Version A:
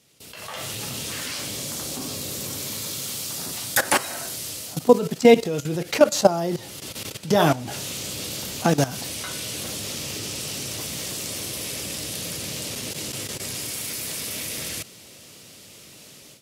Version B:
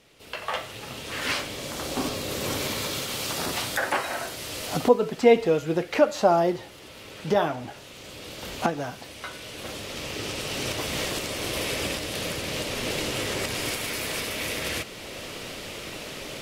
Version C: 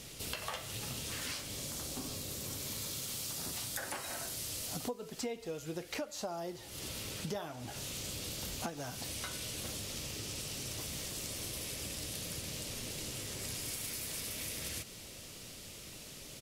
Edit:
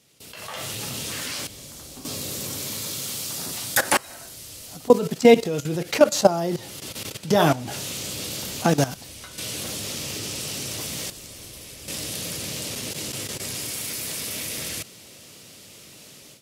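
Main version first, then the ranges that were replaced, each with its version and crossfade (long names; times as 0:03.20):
A
0:01.47–0:02.05: punch in from C
0:03.97–0:04.90: punch in from C
0:08.94–0:09.38: punch in from C
0:11.10–0:11.88: punch in from C
not used: B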